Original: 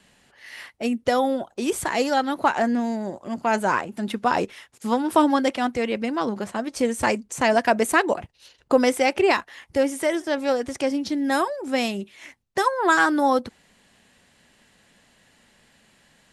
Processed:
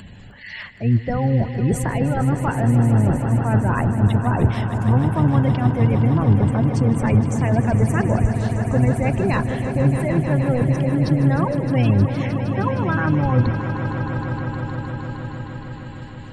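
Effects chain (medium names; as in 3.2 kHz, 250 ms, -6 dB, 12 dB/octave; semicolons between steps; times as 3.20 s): octave divider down 1 oct, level +1 dB; treble shelf 7.3 kHz -7.5 dB; reverse; compression 6:1, threshold -30 dBFS, peak gain reduction 18 dB; reverse; spectral gate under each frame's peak -20 dB strong; upward compressor, threshold -50 dBFS; tone controls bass +12 dB, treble +3 dB; on a send: echo with a slow build-up 155 ms, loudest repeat 5, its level -12 dB; on the sum: trim +7 dB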